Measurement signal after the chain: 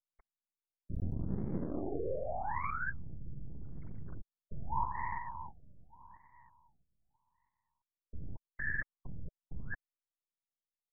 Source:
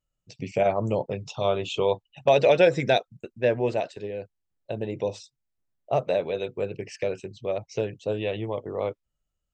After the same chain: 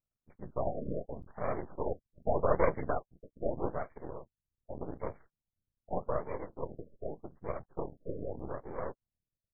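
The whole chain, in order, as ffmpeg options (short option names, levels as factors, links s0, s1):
-af "afftfilt=real='hypot(re,im)*cos(2*PI*random(0))':imag='hypot(re,im)*sin(2*PI*random(1))':win_size=512:overlap=0.75,aeval=exprs='max(val(0),0)':c=same,afftfilt=real='re*lt(b*sr/1024,630*pow(2400/630,0.5+0.5*sin(2*PI*0.83*pts/sr)))':imag='im*lt(b*sr/1024,630*pow(2400/630,0.5+0.5*sin(2*PI*0.83*pts/sr)))':win_size=1024:overlap=0.75"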